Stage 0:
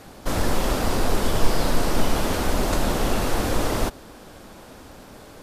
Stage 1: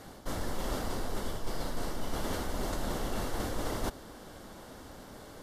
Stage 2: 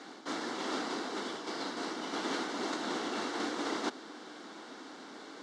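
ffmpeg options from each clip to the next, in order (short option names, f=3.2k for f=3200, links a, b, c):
-af "bandreject=f=2.5k:w=7.3,areverse,acompressor=threshold=-25dB:ratio=6,areverse,volume=-4.5dB"
-af "highpass=f=250:w=0.5412,highpass=f=250:w=1.3066,equalizer=f=300:t=q:w=4:g=4,equalizer=f=570:t=q:w=4:g=-8,equalizer=f=1.4k:t=q:w=4:g=3,equalizer=f=2.2k:t=q:w=4:g=3,equalizer=f=3.9k:t=q:w=4:g=4,lowpass=f=6.9k:w=0.5412,lowpass=f=6.9k:w=1.3066,volume=2dB"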